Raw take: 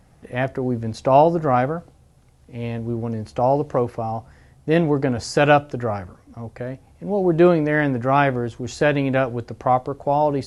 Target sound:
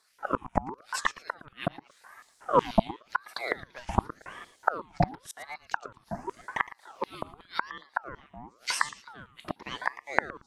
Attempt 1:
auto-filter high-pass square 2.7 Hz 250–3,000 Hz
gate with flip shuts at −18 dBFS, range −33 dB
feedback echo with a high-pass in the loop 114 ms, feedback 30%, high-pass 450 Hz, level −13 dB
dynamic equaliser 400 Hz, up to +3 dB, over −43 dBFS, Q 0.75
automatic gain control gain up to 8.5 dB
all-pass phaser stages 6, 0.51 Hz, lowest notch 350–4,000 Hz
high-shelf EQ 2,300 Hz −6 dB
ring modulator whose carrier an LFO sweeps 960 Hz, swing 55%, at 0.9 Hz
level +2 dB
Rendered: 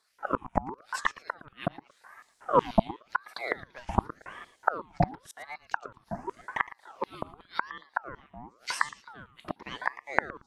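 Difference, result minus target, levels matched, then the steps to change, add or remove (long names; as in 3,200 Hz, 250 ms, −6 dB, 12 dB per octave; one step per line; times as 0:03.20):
4,000 Hz band −3.5 dB
remove: high-shelf EQ 2,300 Hz −6 dB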